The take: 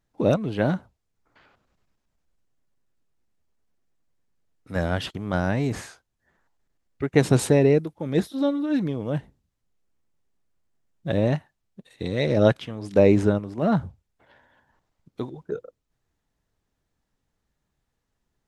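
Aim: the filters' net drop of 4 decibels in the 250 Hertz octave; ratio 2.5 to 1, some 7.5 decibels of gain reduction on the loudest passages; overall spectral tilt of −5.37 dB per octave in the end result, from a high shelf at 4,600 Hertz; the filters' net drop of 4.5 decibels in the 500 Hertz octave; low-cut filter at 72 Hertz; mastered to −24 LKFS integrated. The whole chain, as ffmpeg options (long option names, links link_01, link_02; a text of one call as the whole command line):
ffmpeg -i in.wav -af "highpass=72,equalizer=frequency=250:width_type=o:gain=-4,equalizer=frequency=500:width_type=o:gain=-4.5,highshelf=frequency=4600:gain=7.5,acompressor=threshold=-26dB:ratio=2.5,volume=7.5dB" out.wav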